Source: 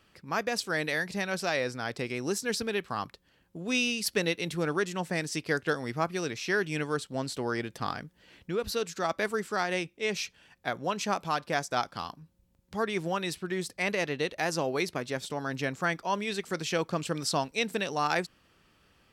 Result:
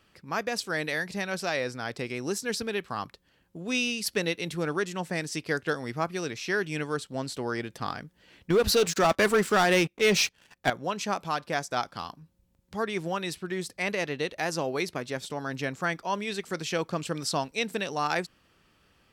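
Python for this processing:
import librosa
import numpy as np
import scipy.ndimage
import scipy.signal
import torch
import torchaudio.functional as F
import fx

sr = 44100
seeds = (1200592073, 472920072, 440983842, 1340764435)

y = fx.leveller(x, sr, passes=3, at=(8.5, 10.7))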